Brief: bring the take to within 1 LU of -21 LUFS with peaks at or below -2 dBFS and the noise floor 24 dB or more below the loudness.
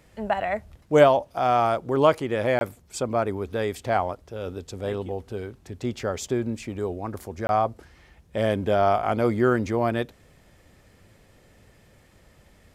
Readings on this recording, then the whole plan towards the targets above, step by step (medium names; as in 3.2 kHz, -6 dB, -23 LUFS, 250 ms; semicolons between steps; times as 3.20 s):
dropouts 2; longest dropout 21 ms; loudness -25.0 LUFS; peak level -2.5 dBFS; loudness target -21.0 LUFS
-> interpolate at 2.59/7.47 s, 21 ms; trim +4 dB; peak limiter -2 dBFS